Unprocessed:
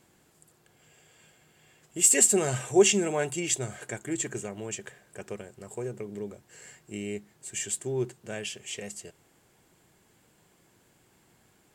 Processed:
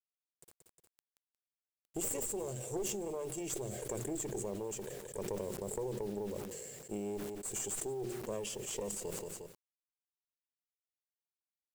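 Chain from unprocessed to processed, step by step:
wavefolder on the positive side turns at −18.5 dBFS
first-order pre-emphasis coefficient 0.8
noise gate −60 dBFS, range −13 dB
low shelf with overshoot 760 Hz +13.5 dB, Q 3
mains-hum notches 60/120/180/240/300/360 Hz
downward compressor 12 to 1, threshold −38 dBFS, peak gain reduction 25 dB
tube saturation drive 33 dB, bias 0.8
bit reduction 11 bits
repeating echo 179 ms, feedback 19%, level −21 dB
level that may fall only so fast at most 22 dB per second
level +5.5 dB

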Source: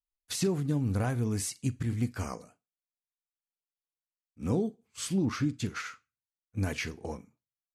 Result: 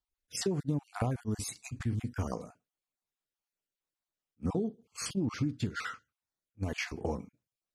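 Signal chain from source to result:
time-frequency cells dropped at random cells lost 28%
low-pass filter 3,700 Hz 6 dB per octave
parametric band 2,100 Hz −3.5 dB 1.6 octaves
downward compressor 6 to 1, threshold −36 dBFS, peak gain reduction 11.5 dB
level that may rise only so fast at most 580 dB per second
level +8 dB

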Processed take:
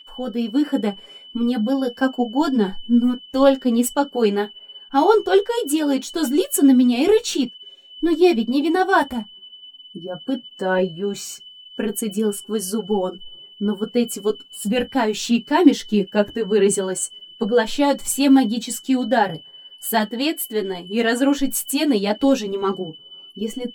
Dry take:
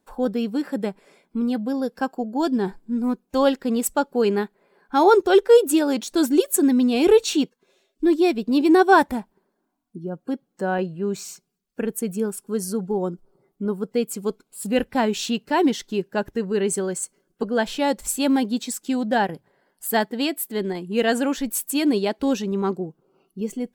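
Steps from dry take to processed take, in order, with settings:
automatic gain control gain up to 7 dB
steady tone 3,000 Hz −37 dBFS
multi-voice chorus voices 6, 0.25 Hz, delay 11 ms, depth 3.8 ms
on a send: convolution reverb, pre-delay 3 ms, DRR 14 dB

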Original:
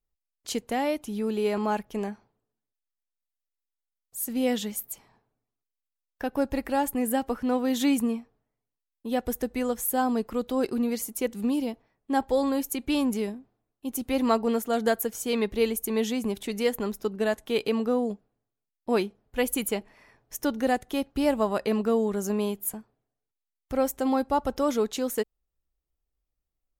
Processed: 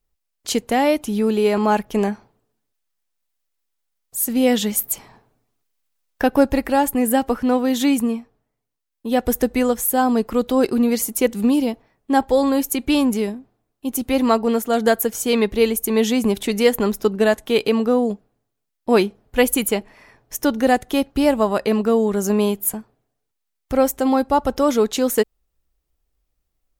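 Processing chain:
speech leveller 0.5 s
level +9 dB

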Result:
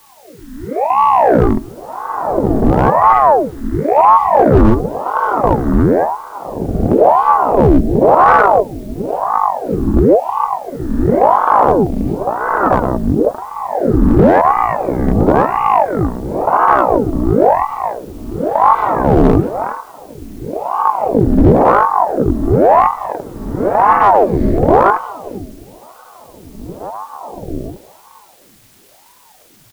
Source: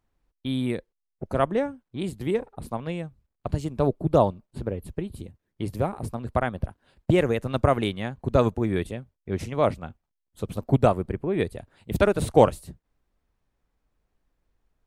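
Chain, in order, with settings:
peak hold with a rise ahead of every peak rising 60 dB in 0.80 s
low-pass filter 3,100 Hz 12 dB per octave
slap from a distant wall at 240 metres, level −29 dB
on a send at −23 dB: convolution reverb RT60 1.6 s, pre-delay 65 ms
on the sum: automatic gain control gain up to 12.5 dB
hollow resonant body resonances 200/290/1,000/2,000 Hz, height 17 dB, ringing for 95 ms
wrong playback speed 15 ips tape played at 7.5 ips
in parallel at −11 dB: bit-depth reduction 6 bits, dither triangular
on the sum: hard clipping −3 dBFS, distortion −13 dB
ring modulator whose carrier an LFO sweeps 560 Hz, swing 80%, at 0.96 Hz
level +1.5 dB

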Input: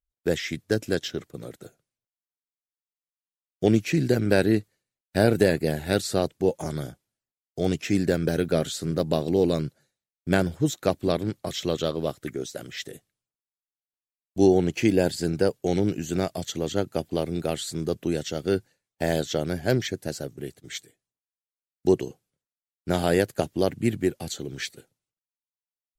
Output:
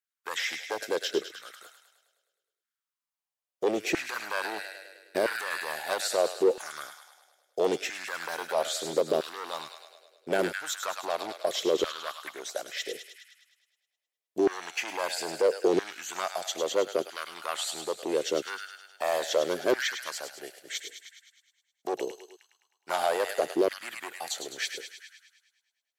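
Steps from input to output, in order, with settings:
delay with a high-pass on its return 104 ms, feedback 60%, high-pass 1,400 Hz, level −7 dB
asymmetric clip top −21.5 dBFS
brickwall limiter −18 dBFS, peak gain reduction 9 dB
auto-filter high-pass saw down 0.76 Hz 360–1,600 Hz

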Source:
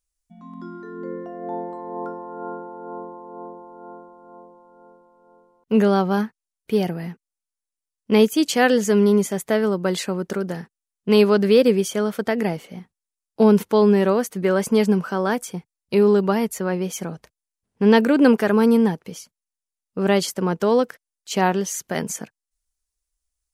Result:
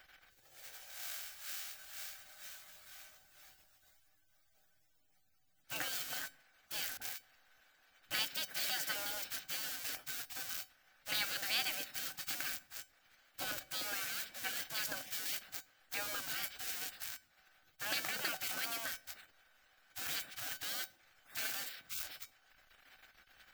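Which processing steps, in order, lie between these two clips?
spike at every zero crossing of −19 dBFS
gate on every frequency bin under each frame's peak −25 dB weak
thirty-one-band graphic EQ 400 Hz −10 dB, 1,000 Hz −10 dB, 1,600 Hz +5 dB, 10,000 Hz −6 dB
in parallel at −4.5 dB: slack as between gear wheels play −44.5 dBFS
on the sum: tuned comb filter 760 Hz, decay 0.2 s, harmonics all, mix 70%
0:06.97–0:08.11: all-pass dispersion highs, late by 45 ms, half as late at 540 Hz
on a send at −23 dB: convolution reverb RT60 0.70 s, pre-delay 77 ms

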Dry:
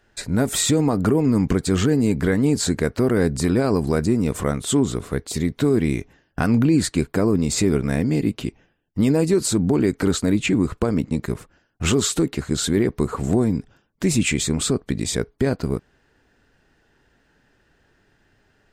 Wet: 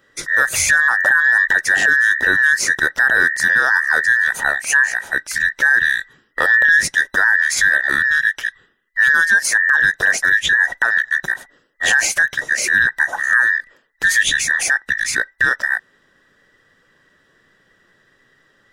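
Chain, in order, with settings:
frequency inversion band by band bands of 2,000 Hz
level +4 dB

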